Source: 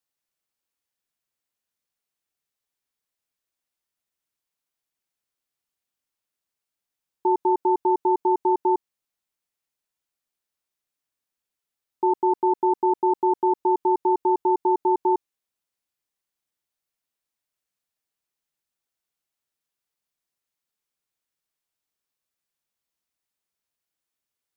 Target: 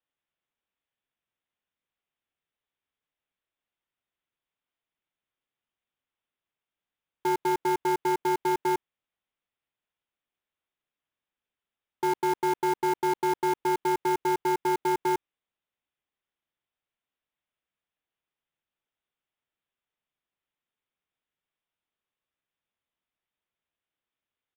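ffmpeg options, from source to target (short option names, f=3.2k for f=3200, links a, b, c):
-af "aresample=8000,asoftclip=type=tanh:threshold=-22.5dB,aresample=44100,acrusher=bits=3:mode=log:mix=0:aa=0.000001"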